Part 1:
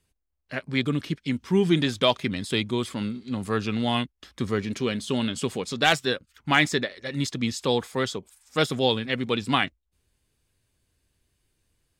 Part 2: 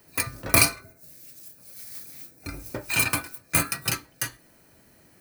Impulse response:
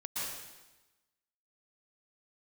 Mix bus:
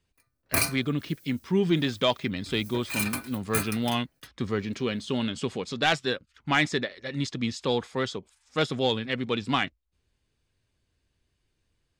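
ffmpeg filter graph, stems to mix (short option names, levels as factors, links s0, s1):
-filter_complex "[0:a]lowpass=6100,volume=0.794,asplit=2[s0][s1];[1:a]volume=1.78,afade=t=out:st=1.12:d=0.36:silence=0.266073,afade=t=in:st=2.43:d=0.2:silence=0.266073,afade=t=out:st=3.65:d=0.24:silence=0.375837[s2];[s1]apad=whole_len=229680[s3];[s2][s3]sidechaingate=range=0.02:threshold=0.00447:ratio=16:detection=peak[s4];[s0][s4]amix=inputs=2:normalize=0,asoftclip=type=tanh:threshold=0.299"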